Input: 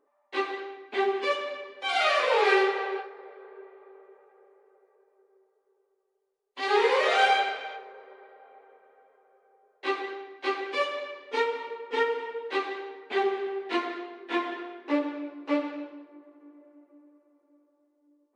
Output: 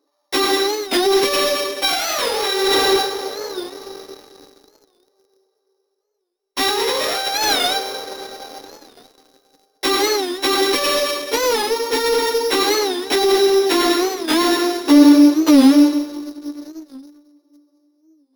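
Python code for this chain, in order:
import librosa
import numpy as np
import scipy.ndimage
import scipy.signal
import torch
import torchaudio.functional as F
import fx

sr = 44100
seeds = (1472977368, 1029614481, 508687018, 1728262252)

p1 = np.r_[np.sort(x[:len(x) // 8 * 8].reshape(-1, 8), axis=1).ravel(), x[len(x) // 8 * 8:]]
p2 = fx.peak_eq(p1, sr, hz=140.0, db=-13.5, octaves=2.6)
p3 = fx.hum_notches(p2, sr, base_hz=60, count=7)
p4 = fx.over_compress(p3, sr, threshold_db=-33.0, ratio=-1.0)
p5 = fx.leveller(p4, sr, passes=3)
p6 = fx.small_body(p5, sr, hz=(290.0, 3900.0), ring_ms=50, db=18)
p7 = p6 + fx.echo_single(p6, sr, ms=217, db=-14.5, dry=0)
p8 = fx.record_warp(p7, sr, rpm=45.0, depth_cents=160.0)
y = p8 * 10.0 ** (4.0 / 20.0)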